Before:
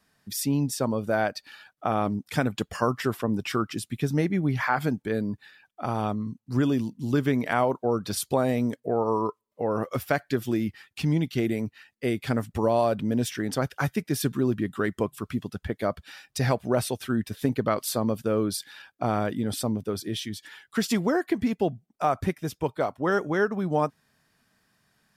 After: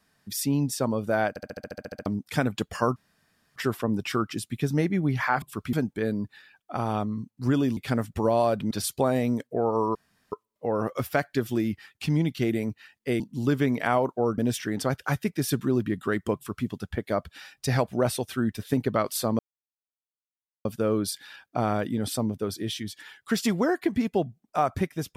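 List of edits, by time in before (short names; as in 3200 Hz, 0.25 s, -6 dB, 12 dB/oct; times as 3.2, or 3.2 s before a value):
1.29 stutter in place 0.07 s, 11 plays
2.96 insert room tone 0.60 s
6.86–8.04 swap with 12.16–13.1
9.28 insert room tone 0.37 s
15.07–15.38 copy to 4.82
18.11 insert silence 1.26 s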